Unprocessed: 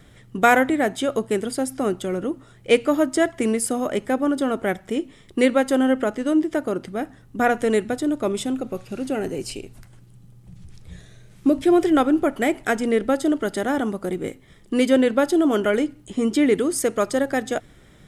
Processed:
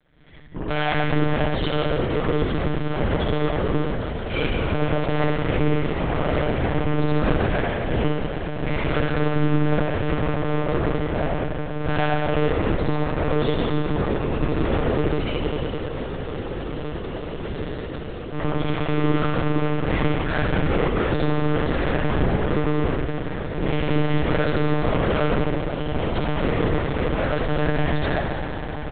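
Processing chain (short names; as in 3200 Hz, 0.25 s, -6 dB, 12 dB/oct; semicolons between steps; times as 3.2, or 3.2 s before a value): octaver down 2 oct, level -3 dB; gate -46 dBFS, range -17 dB; de-hum 103.2 Hz, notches 3; dynamic EQ 940 Hz, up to -8 dB, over -40 dBFS, Q 2.2; comb 3 ms, depth 74%; in parallel at -1 dB: limiter -13.5 dBFS, peak gain reduction 10.5 dB; on the sum: time stretch by phase-locked vocoder 1.6×; tube stage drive 25 dB, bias 0.7; on a send: swelling echo 0.188 s, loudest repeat 8, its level -18 dB; on the sum: spring tank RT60 1.7 s, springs 50/59 ms, chirp 20 ms, DRR -7 dB; monotone LPC vocoder at 8 kHz 150 Hz; gain -2 dB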